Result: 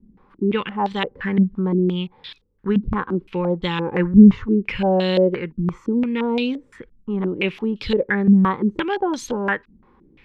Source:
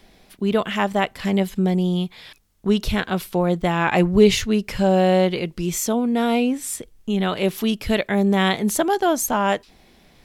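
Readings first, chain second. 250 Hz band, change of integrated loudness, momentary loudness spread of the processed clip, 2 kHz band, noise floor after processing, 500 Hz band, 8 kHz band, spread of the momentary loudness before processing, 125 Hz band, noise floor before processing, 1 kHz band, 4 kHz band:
+3.0 dB, +0.5 dB, 10 LU, −1.0 dB, −57 dBFS, −2.0 dB, below −15 dB, 9 LU, +1.5 dB, −54 dBFS, −3.5 dB, −4.0 dB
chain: Butterworth band-reject 670 Hz, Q 2.6
low-pass on a step sequencer 5.8 Hz 220–3,800 Hz
level −2.5 dB

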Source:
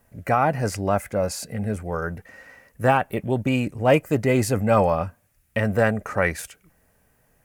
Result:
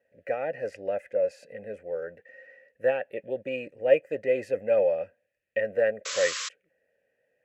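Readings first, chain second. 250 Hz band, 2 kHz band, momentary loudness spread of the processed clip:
−18.0 dB, −7.0 dB, 12 LU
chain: formant filter e
sound drawn into the spectrogram noise, 0:06.05–0:06.49, 1,000–7,800 Hz −36 dBFS
level +2.5 dB

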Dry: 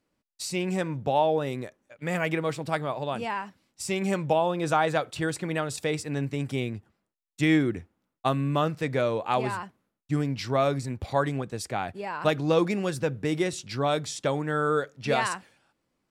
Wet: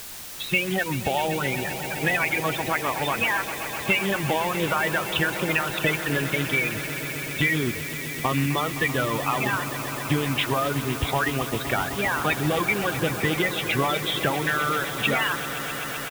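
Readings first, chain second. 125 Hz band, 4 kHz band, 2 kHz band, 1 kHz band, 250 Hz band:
+2.0 dB, +9.0 dB, +10.5 dB, +2.5 dB, +0.5 dB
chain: spectral magnitudes quantised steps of 30 dB
brickwall limiter −19 dBFS, peak gain reduction 7.5 dB
downsampling to 8,000 Hz
parametric band 2,900 Hz +14 dB 2.1 octaves
downward compressor 3 to 1, threshold −30 dBFS, peak gain reduction 10.5 dB
reverb reduction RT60 1.5 s
background noise white −46 dBFS
low-shelf EQ 150 Hz +5 dB
echo that builds up and dies away 129 ms, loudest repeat 5, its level −15 dB
level +7.5 dB

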